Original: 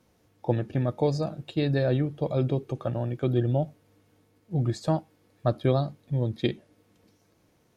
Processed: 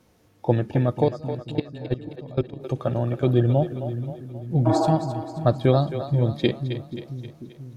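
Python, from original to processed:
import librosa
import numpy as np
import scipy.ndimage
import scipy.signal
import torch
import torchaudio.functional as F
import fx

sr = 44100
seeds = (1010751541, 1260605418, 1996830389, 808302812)

y = fx.level_steps(x, sr, step_db=23, at=(1.04, 2.63))
y = fx.spec_repair(y, sr, seeds[0], start_s=4.69, length_s=0.2, low_hz=260.0, high_hz=1700.0, source='after')
y = fx.echo_split(y, sr, split_hz=310.0, low_ms=488, high_ms=265, feedback_pct=52, wet_db=-10.0)
y = F.gain(torch.from_numpy(y), 5.0).numpy()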